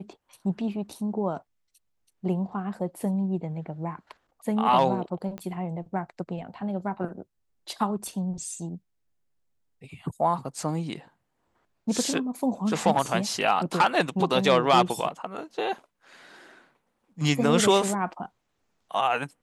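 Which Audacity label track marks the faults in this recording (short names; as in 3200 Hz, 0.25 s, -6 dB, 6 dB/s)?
5.380000	5.380000	pop -23 dBFS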